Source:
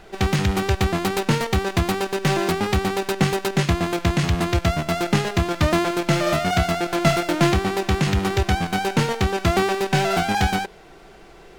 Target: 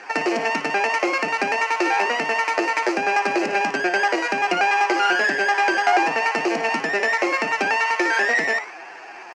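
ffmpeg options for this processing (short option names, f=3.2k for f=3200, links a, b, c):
-filter_complex "[0:a]equalizer=f=1.5k:t=o:w=0.54:g=-13,bandreject=f=60:t=h:w=6,bandreject=f=120:t=h:w=6,bandreject=f=180:t=h:w=6,bandreject=f=240:t=h:w=6,bandreject=f=300:t=h:w=6,bandreject=f=360:t=h:w=6,bandreject=f=420:t=h:w=6,bandreject=f=480:t=h:w=6,bandreject=f=540:t=h:w=6,asplit=2[a][b];[b]alimiter=limit=-15dB:level=0:latency=1:release=235,volume=1dB[c];[a][c]amix=inputs=2:normalize=0,acompressor=threshold=-18dB:ratio=16,atempo=0.53,aeval=exprs='clip(val(0),-1,0.112)':c=same,highpass=f=130:w=0.5412,highpass=f=130:w=1.3066,equalizer=f=200:t=q:w=4:g=-7,equalizer=f=300:t=q:w=4:g=7,equalizer=f=420:t=q:w=4:g=-8,equalizer=f=1.1k:t=q:w=4:g=10,equalizer=f=1.5k:t=q:w=4:g=-10,lowpass=f=2.1k:w=0.5412,lowpass=f=2.1k:w=1.3066,asplit=2[d][e];[e]asplit=4[f][g][h][i];[f]adelay=133,afreqshift=73,volume=-13dB[j];[g]adelay=266,afreqshift=146,volume=-20.1dB[k];[h]adelay=399,afreqshift=219,volume=-27.3dB[l];[i]adelay=532,afreqshift=292,volume=-34.4dB[m];[j][k][l][m]amix=inputs=4:normalize=0[n];[d][n]amix=inputs=2:normalize=0,asetrate=103194,aresample=44100,volume=4dB"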